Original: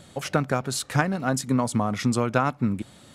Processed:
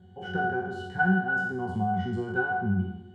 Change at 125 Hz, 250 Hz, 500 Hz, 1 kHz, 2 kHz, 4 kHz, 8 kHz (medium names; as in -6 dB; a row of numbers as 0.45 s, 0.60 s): -4.5 dB, -4.0 dB, -5.5 dB, -1.0 dB, +4.5 dB, -12.0 dB, under -30 dB